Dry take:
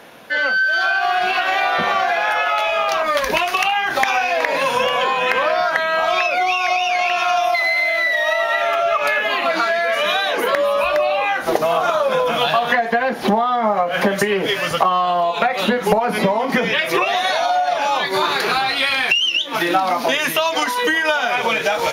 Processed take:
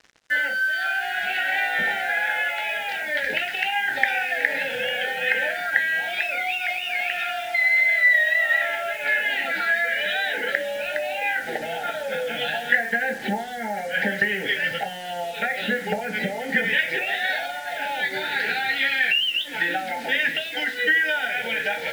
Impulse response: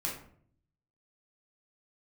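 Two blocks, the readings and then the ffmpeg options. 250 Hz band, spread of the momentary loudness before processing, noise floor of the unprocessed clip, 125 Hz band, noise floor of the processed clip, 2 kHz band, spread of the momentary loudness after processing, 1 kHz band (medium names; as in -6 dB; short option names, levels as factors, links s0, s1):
-9.5 dB, 2 LU, -24 dBFS, -9.0 dB, -33 dBFS, -1.5 dB, 8 LU, -12.5 dB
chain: -filter_complex "[0:a]asuperstop=centerf=1100:order=20:qfactor=2.2,highpass=120,equalizer=f=160:t=q:w=4:g=-5,equalizer=f=340:t=q:w=4:g=-8,equalizer=f=680:t=q:w=4:g=-8,equalizer=f=1000:t=q:w=4:g=8,equalizer=f=1800:t=q:w=4:g=9,equalizer=f=2500:t=q:w=4:g=3,lowpass=f=3900:w=0.5412,lowpass=f=3900:w=1.3066,asplit=2[s0][s1];[1:a]atrim=start_sample=2205,asetrate=88200,aresample=44100,highshelf=f=7600:g=9[s2];[s1][s2]afir=irnorm=-1:irlink=0,volume=0.708[s3];[s0][s3]amix=inputs=2:normalize=0,acrusher=bits=4:mix=0:aa=0.5,volume=0.335"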